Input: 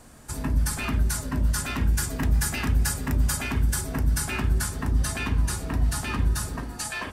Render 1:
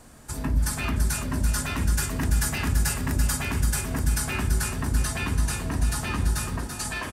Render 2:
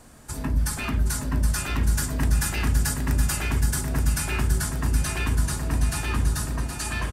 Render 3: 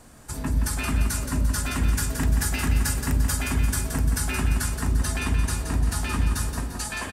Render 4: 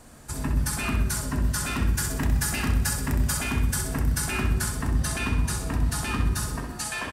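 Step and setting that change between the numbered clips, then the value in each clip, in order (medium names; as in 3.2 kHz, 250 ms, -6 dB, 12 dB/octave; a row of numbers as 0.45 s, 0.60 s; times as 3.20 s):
feedback delay, time: 336 ms, 770 ms, 173 ms, 64 ms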